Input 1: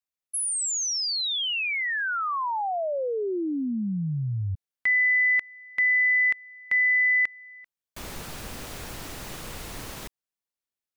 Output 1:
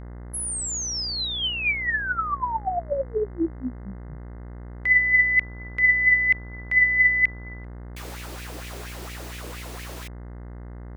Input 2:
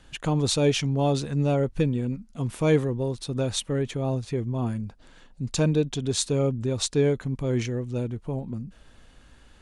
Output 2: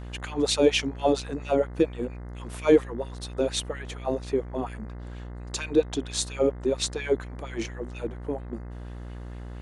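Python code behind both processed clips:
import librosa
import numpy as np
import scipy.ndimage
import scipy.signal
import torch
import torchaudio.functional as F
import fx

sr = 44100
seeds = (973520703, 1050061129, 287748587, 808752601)

y = fx.filter_lfo_highpass(x, sr, shape='sine', hz=4.3, low_hz=300.0, high_hz=2400.0, q=2.9)
y = fx.dmg_buzz(y, sr, base_hz=60.0, harmonics=35, level_db=-36.0, tilt_db=-7, odd_only=False)
y = y * librosa.db_to_amplitude(-2.0)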